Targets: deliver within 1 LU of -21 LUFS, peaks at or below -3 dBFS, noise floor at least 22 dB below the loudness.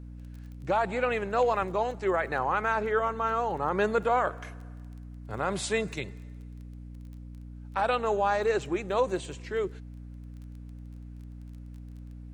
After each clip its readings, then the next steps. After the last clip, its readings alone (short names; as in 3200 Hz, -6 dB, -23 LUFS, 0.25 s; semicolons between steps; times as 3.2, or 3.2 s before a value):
ticks 18/s; hum 60 Hz; harmonics up to 300 Hz; hum level -40 dBFS; loudness -28.5 LUFS; peak -14.5 dBFS; loudness target -21.0 LUFS
-> de-click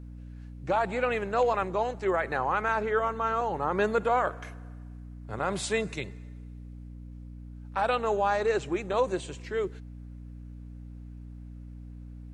ticks 0/s; hum 60 Hz; harmonics up to 300 Hz; hum level -40 dBFS
-> notches 60/120/180/240/300 Hz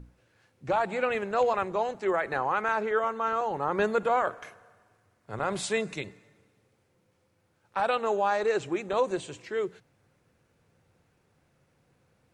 hum none; loudness -28.5 LUFS; peak -15.0 dBFS; loudness target -21.0 LUFS
-> gain +7.5 dB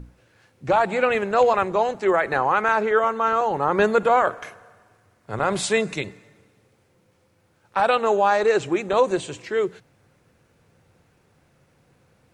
loudness -21.0 LUFS; peak -7.5 dBFS; noise floor -63 dBFS